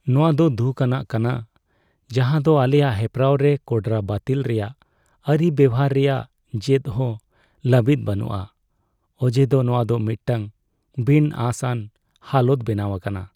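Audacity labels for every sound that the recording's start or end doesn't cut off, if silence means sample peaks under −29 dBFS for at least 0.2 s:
2.100000	4.680000	sound
5.270000	6.220000	sound
6.540000	7.160000	sound
7.650000	8.440000	sound
9.220000	10.470000	sound
10.980000	11.840000	sound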